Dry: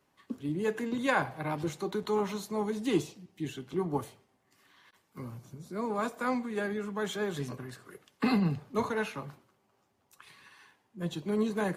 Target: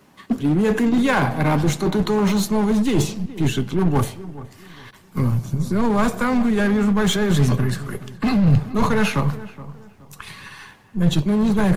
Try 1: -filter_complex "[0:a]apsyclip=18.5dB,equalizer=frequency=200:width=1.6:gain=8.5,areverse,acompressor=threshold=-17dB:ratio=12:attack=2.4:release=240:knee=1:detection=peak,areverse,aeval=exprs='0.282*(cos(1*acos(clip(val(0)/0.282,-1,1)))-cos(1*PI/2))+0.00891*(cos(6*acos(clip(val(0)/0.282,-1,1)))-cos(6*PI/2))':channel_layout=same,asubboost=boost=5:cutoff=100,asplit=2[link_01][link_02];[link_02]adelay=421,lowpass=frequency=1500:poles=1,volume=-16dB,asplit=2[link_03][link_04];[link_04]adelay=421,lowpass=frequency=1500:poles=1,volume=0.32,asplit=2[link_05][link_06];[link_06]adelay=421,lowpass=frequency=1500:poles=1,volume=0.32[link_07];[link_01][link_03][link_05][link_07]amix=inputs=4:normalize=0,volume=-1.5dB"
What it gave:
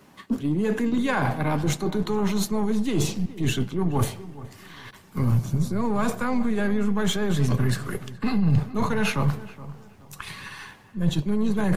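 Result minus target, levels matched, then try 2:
downward compressor: peak gain reduction +7 dB
-filter_complex "[0:a]apsyclip=18.5dB,equalizer=frequency=200:width=1.6:gain=8.5,areverse,acompressor=threshold=-9.5dB:ratio=12:attack=2.4:release=240:knee=1:detection=peak,areverse,aeval=exprs='0.282*(cos(1*acos(clip(val(0)/0.282,-1,1)))-cos(1*PI/2))+0.00891*(cos(6*acos(clip(val(0)/0.282,-1,1)))-cos(6*PI/2))':channel_layout=same,asubboost=boost=5:cutoff=100,asplit=2[link_01][link_02];[link_02]adelay=421,lowpass=frequency=1500:poles=1,volume=-16dB,asplit=2[link_03][link_04];[link_04]adelay=421,lowpass=frequency=1500:poles=1,volume=0.32,asplit=2[link_05][link_06];[link_06]adelay=421,lowpass=frequency=1500:poles=1,volume=0.32[link_07];[link_01][link_03][link_05][link_07]amix=inputs=4:normalize=0,volume=-1.5dB"

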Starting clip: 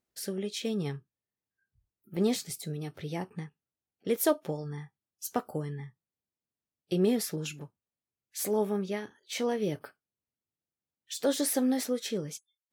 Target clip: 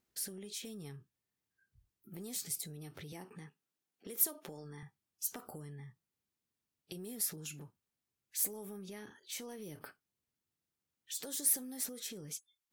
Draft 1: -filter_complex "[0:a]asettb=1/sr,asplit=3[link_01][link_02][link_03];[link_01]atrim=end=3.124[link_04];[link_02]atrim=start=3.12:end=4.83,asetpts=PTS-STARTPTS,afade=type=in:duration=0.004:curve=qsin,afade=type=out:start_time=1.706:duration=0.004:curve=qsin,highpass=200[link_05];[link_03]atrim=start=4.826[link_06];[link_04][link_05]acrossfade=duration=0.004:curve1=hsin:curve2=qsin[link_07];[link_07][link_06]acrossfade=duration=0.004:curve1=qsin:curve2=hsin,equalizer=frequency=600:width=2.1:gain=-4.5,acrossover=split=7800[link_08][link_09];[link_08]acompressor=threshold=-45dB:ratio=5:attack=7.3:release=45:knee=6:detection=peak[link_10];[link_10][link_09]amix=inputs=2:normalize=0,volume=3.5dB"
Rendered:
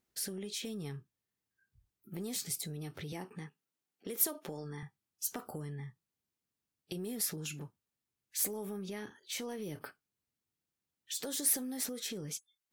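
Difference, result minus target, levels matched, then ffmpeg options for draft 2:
downward compressor: peak gain reduction −6 dB
-filter_complex "[0:a]asettb=1/sr,asplit=3[link_01][link_02][link_03];[link_01]atrim=end=3.124[link_04];[link_02]atrim=start=3.12:end=4.83,asetpts=PTS-STARTPTS,afade=type=in:duration=0.004:curve=qsin,afade=type=out:start_time=1.706:duration=0.004:curve=qsin,highpass=200[link_05];[link_03]atrim=start=4.826[link_06];[link_04][link_05]acrossfade=duration=0.004:curve1=hsin:curve2=qsin[link_07];[link_07][link_06]acrossfade=duration=0.004:curve1=qsin:curve2=hsin,equalizer=frequency=600:width=2.1:gain=-4.5,acrossover=split=7800[link_08][link_09];[link_08]acompressor=threshold=-52.5dB:ratio=5:attack=7.3:release=45:knee=6:detection=peak[link_10];[link_10][link_09]amix=inputs=2:normalize=0,volume=3.5dB"

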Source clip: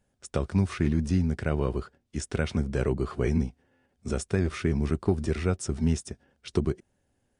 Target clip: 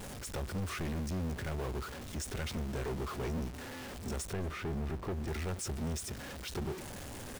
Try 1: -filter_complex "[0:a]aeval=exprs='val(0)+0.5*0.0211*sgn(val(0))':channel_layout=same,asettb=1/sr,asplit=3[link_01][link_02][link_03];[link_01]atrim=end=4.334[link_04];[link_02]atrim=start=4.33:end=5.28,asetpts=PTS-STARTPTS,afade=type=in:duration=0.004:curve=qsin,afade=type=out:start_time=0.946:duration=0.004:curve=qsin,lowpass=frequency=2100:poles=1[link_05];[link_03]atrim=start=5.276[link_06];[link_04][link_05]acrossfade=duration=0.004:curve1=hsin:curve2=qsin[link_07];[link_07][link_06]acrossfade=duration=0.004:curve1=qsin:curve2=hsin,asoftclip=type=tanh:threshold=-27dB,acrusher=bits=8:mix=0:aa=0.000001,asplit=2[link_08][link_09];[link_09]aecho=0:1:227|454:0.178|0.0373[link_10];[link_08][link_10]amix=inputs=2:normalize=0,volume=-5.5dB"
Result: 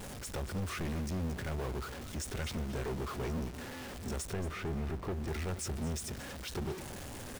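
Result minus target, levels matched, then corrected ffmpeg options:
echo-to-direct +11.5 dB
-filter_complex "[0:a]aeval=exprs='val(0)+0.5*0.0211*sgn(val(0))':channel_layout=same,asettb=1/sr,asplit=3[link_01][link_02][link_03];[link_01]atrim=end=4.334[link_04];[link_02]atrim=start=4.33:end=5.28,asetpts=PTS-STARTPTS,afade=type=in:duration=0.004:curve=qsin,afade=type=out:start_time=0.946:duration=0.004:curve=qsin,lowpass=frequency=2100:poles=1[link_05];[link_03]atrim=start=5.276[link_06];[link_04][link_05]acrossfade=duration=0.004:curve1=hsin:curve2=qsin[link_07];[link_07][link_06]acrossfade=duration=0.004:curve1=qsin:curve2=hsin,asoftclip=type=tanh:threshold=-27dB,acrusher=bits=8:mix=0:aa=0.000001,asplit=2[link_08][link_09];[link_09]aecho=0:1:227:0.0473[link_10];[link_08][link_10]amix=inputs=2:normalize=0,volume=-5.5dB"

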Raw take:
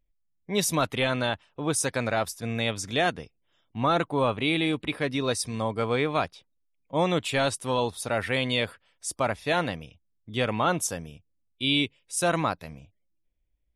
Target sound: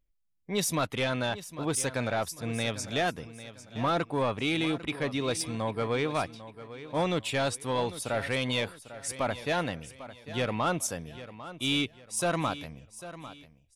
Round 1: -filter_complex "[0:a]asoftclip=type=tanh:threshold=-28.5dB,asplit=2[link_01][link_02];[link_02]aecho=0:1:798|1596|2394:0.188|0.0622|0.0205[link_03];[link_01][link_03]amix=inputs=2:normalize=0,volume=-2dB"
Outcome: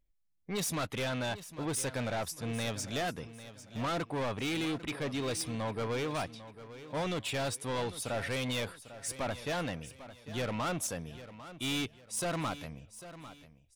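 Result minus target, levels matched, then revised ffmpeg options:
soft clipping: distortion +10 dB
-filter_complex "[0:a]asoftclip=type=tanh:threshold=-17.5dB,asplit=2[link_01][link_02];[link_02]aecho=0:1:798|1596|2394:0.188|0.0622|0.0205[link_03];[link_01][link_03]amix=inputs=2:normalize=0,volume=-2dB"

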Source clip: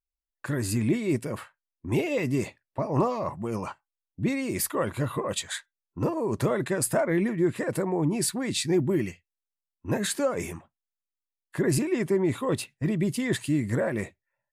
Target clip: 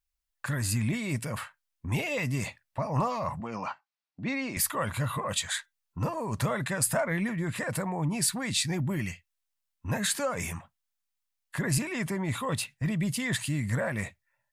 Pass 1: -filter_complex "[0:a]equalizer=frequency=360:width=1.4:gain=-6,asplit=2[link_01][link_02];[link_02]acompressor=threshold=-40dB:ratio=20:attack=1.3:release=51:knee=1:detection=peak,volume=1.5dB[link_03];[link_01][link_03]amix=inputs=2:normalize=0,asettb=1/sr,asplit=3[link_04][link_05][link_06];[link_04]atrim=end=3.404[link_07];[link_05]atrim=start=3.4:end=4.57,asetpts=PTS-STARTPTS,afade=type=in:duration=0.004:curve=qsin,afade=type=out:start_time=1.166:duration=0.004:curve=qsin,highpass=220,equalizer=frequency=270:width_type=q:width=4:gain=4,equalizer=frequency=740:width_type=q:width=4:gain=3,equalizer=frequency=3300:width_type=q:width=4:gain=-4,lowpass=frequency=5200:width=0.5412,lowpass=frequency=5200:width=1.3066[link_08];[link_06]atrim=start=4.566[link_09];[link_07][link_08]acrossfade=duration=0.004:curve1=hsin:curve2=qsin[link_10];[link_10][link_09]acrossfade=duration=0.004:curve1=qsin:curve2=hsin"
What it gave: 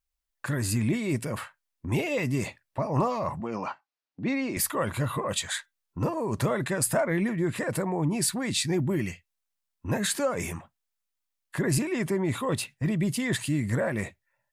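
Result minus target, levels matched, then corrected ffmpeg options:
500 Hz band +3.0 dB
-filter_complex "[0:a]equalizer=frequency=360:width=1.4:gain=-16.5,asplit=2[link_01][link_02];[link_02]acompressor=threshold=-40dB:ratio=20:attack=1.3:release=51:knee=1:detection=peak,volume=1.5dB[link_03];[link_01][link_03]amix=inputs=2:normalize=0,asettb=1/sr,asplit=3[link_04][link_05][link_06];[link_04]atrim=end=3.404[link_07];[link_05]atrim=start=3.4:end=4.57,asetpts=PTS-STARTPTS,afade=type=in:duration=0.004:curve=qsin,afade=type=out:start_time=1.166:duration=0.004:curve=qsin,highpass=220,equalizer=frequency=270:width_type=q:width=4:gain=4,equalizer=frequency=740:width_type=q:width=4:gain=3,equalizer=frequency=3300:width_type=q:width=4:gain=-4,lowpass=frequency=5200:width=0.5412,lowpass=frequency=5200:width=1.3066[link_08];[link_06]atrim=start=4.566[link_09];[link_07][link_08]acrossfade=duration=0.004:curve1=hsin:curve2=qsin[link_10];[link_10][link_09]acrossfade=duration=0.004:curve1=qsin:curve2=hsin"

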